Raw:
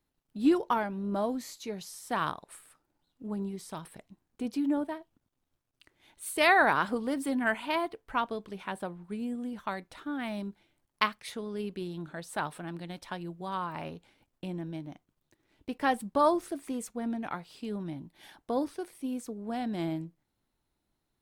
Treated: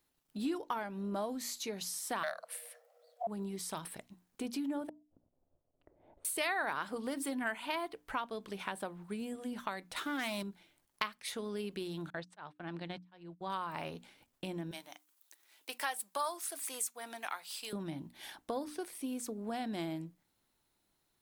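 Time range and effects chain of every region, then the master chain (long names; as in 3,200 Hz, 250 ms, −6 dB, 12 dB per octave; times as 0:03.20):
0:02.23–0:03.27: low shelf with overshoot 280 Hz +11.5 dB, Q 1.5 + frequency shifter +470 Hz
0:04.89–0:06.25: low-pass with resonance 600 Hz, resonance Q 3 + low-shelf EQ 110 Hz +10.5 dB + gate with flip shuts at −33 dBFS, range −39 dB
0:09.96–0:10.43: spectral tilt +1.5 dB per octave + leveller curve on the samples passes 2
0:12.10–0:13.50: noise gate −44 dBFS, range −35 dB + volume swells 443 ms + high-frequency loss of the air 140 metres
0:14.71–0:17.73: high-pass filter 750 Hz + high-shelf EQ 5,700 Hz +11.5 dB
whole clip: spectral tilt +1.5 dB per octave; mains-hum notches 60/120/180/240/300 Hz; downward compressor 3 to 1, threshold −39 dBFS; level +2.5 dB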